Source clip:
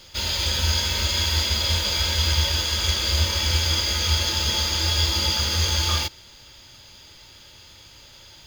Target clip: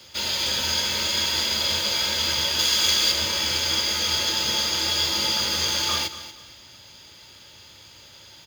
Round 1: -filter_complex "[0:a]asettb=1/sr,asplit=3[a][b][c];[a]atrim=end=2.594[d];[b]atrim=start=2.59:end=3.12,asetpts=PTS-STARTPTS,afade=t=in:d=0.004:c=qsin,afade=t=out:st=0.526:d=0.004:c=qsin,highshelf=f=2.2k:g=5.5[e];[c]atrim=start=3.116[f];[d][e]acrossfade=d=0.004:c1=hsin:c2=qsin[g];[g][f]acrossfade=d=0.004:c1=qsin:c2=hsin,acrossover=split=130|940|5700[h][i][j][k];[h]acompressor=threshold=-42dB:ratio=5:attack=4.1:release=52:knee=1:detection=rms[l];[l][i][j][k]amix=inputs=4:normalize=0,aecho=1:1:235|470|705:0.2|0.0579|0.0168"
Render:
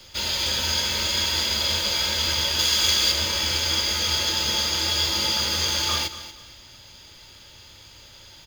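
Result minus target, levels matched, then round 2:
125 Hz band +4.5 dB
-filter_complex "[0:a]asettb=1/sr,asplit=3[a][b][c];[a]atrim=end=2.594[d];[b]atrim=start=2.59:end=3.12,asetpts=PTS-STARTPTS,afade=t=in:d=0.004:c=qsin,afade=t=out:st=0.526:d=0.004:c=qsin,highshelf=f=2.2k:g=5.5[e];[c]atrim=start=3.116[f];[d][e]acrossfade=d=0.004:c1=hsin:c2=qsin[g];[g][f]acrossfade=d=0.004:c1=qsin:c2=hsin,acrossover=split=130|940|5700[h][i][j][k];[h]acompressor=threshold=-42dB:ratio=5:attack=4.1:release=52:knee=1:detection=rms,highpass=84[l];[l][i][j][k]amix=inputs=4:normalize=0,aecho=1:1:235|470|705:0.2|0.0579|0.0168"

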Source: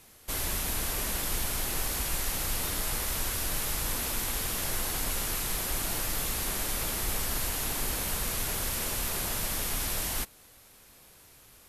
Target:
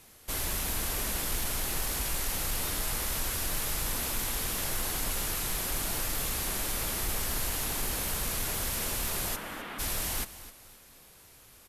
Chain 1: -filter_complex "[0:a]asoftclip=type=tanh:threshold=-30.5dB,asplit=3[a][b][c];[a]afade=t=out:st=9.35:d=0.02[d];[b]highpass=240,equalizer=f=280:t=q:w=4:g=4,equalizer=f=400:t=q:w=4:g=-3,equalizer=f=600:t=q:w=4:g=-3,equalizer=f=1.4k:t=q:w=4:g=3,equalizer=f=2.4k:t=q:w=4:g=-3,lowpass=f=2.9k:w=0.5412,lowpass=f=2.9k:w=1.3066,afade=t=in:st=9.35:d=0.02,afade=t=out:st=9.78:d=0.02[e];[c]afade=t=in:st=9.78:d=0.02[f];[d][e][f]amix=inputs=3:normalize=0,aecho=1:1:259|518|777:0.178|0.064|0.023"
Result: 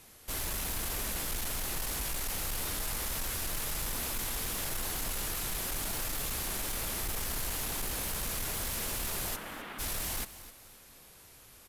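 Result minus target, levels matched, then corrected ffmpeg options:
soft clip: distortion +12 dB
-filter_complex "[0:a]asoftclip=type=tanh:threshold=-21dB,asplit=3[a][b][c];[a]afade=t=out:st=9.35:d=0.02[d];[b]highpass=240,equalizer=f=280:t=q:w=4:g=4,equalizer=f=400:t=q:w=4:g=-3,equalizer=f=600:t=q:w=4:g=-3,equalizer=f=1.4k:t=q:w=4:g=3,equalizer=f=2.4k:t=q:w=4:g=-3,lowpass=f=2.9k:w=0.5412,lowpass=f=2.9k:w=1.3066,afade=t=in:st=9.35:d=0.02,afade=t=out:st=9.78:d=0.02[e];[c]afade=t=in:st=9.78:d=0.02[f];[d][e][f]amix=inputs=3:normalize=0,aecho=1:1:259|518|777:0.178|0.064|0.023"

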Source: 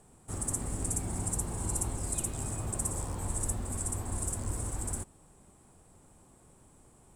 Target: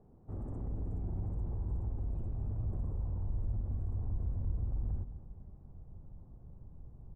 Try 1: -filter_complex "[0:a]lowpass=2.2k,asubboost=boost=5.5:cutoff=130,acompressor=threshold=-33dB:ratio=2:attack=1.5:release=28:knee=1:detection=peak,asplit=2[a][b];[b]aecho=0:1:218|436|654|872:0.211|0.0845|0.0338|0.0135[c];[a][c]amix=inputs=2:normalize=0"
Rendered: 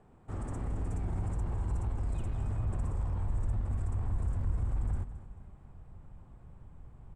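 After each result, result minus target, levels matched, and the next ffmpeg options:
2000 Hz band +16.5 dB; compressor: peak gain reduction -3.5 dB
-filter_complex "[0:a]lowpass=580,asubboost=boost=5.5:cutoff=130,acompressor=threshold=-33dB:ratio=2:attack=1.5:release=28:knee=1:detection=peak,asplit=2[a][b];[b]aecho=0:1:218|436|654|872:0.211|0.0845|0.0338|0.0135[c];[a][c]amix=inputs=2:normalize=0"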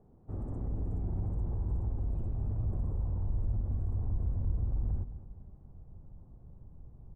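compressor: peak gain reduction -3 dB
-filter_complex "[0:a]lowpass=580,asubboost=boost=5.5:cutoff=130,acompressor=threshold=-39.5dB:ratio=2:attack=1.5:release=28:knee=1:detection=peak,asplit=2[a][b];[b]aecho=0:1:218|436|654|872:0.211|0.0845|0.0338|0.0135[c];[a][c]amix=inputs=2:normalize=0"

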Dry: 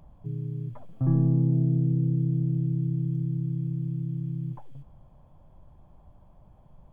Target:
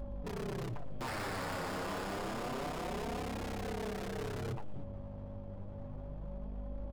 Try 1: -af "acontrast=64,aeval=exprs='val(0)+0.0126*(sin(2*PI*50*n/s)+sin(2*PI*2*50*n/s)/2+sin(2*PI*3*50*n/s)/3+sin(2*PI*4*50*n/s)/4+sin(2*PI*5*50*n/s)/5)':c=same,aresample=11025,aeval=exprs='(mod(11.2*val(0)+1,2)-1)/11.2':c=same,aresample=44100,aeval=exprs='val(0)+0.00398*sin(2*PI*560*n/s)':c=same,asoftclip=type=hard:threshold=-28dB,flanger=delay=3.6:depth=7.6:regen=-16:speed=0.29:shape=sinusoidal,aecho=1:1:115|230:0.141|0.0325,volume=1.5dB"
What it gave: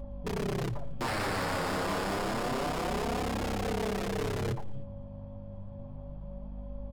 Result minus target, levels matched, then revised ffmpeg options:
hard clip: distortion -5 dB
-af "acontrast=64,aeval=exprs='val(0)+0.0126*(sin(2*PI*50*n/s)+sin(2*PI*2*50*n/s)/2+sin(2*PI*3*50*n/s)/3+sin(2*PI*4*50*n/s)/4+sin(2*PI*5*50*n/s)/5)':c=same,aresample=11025,aeval=exprs='(mod(11.2*val(0)+1,2)-1)/11.2':c=same,aresample=44100,aeval=exprs='val(0)+0.00398*sin(2*PI*560*n/s)':c=same,asoftclip=type=hard:threshold=-36dB,flanger=delay=3.6:depth=7.6:regen=-16:speed=0.29:shape=sinusoidal,aecho=1:1:115|230:0.141|0.0325,volume=1.5dB"

